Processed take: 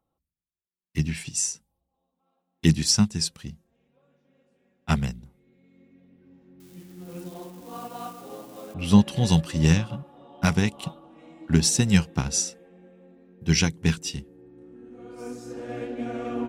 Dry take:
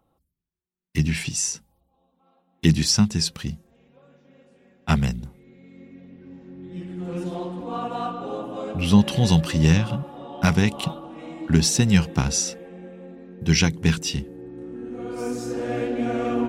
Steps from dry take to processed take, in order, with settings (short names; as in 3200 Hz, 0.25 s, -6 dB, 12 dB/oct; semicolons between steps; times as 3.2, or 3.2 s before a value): 6.6–8.74 switching spikes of -28 dBFS; dynamic EQ 8700 Hz, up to +6 dB, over -41 dBFS, Q 1.1; upward expander 1.5:1, over -33 dBFS